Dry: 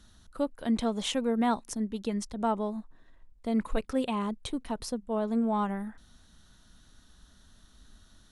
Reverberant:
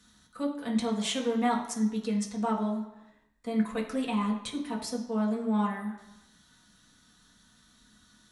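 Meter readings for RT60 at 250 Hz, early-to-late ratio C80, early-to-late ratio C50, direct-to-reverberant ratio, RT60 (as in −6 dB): 0.85 s, 10.5 dB, 7.5 dB, −2.0 dB, 1.0 s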